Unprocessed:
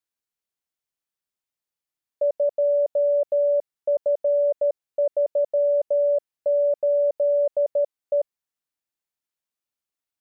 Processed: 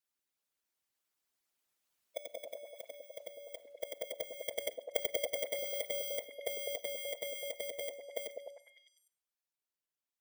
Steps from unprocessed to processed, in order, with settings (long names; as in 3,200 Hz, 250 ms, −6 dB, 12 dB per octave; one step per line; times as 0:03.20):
samples in bit-reversed order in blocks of 16 samples
source passing by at 0:02.95, 8 m/s, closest 6.6 metres
compressor whose output falls as the input rises −31 dBFS, ratio −0.5
four-comb reverb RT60 0.49 s, combs from 33 ms, DRR 11.5 dB
dynamic equaliser 620 Hz, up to −7 dB, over −43 dBFS, Q 1.4
harmonic and percussive parts rebalanced harmonic −17 dB
low-shelf EQ 470 Hz −5 dB
echo through a band-pass that steps 101 ms, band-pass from 290 Hz, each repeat 0.7 octaves, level −1 dB
level +11 dB